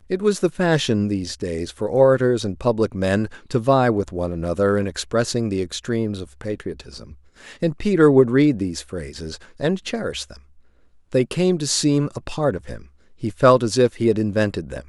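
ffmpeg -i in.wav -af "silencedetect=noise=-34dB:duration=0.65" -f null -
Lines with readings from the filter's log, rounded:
silence_start: 10.36
silence_end: 11.12 | silence_duration: 0.76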